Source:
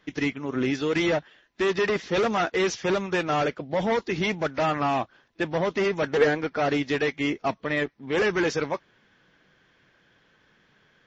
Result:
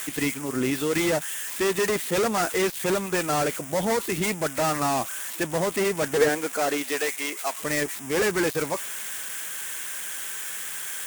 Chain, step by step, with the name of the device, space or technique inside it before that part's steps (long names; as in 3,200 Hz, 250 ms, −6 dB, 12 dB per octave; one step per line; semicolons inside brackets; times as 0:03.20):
budget class-D amplifier (gap after every zero crossing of 0.12 ms; spike at every zero crossing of −18.5 dBFS)
0:06.28–0:07.57: high-pass filter 200 Hz → 730 Hz 12 dB per octave